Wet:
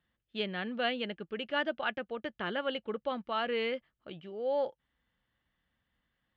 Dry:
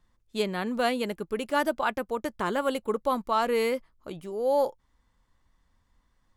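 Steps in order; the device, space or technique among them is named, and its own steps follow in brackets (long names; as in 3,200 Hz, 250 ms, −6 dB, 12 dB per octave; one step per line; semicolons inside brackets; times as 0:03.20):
guitar cabinet (loudspeaker in its box 77–3,700 Hz, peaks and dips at 87 Hz −8 dB, 270 Hz −3 dB, 410 Hz −3 dB, 1,000 Hz −10 dB, 1,700 Hz +5 dB, 3,000 Hz +9 dB)
level −5.5 dB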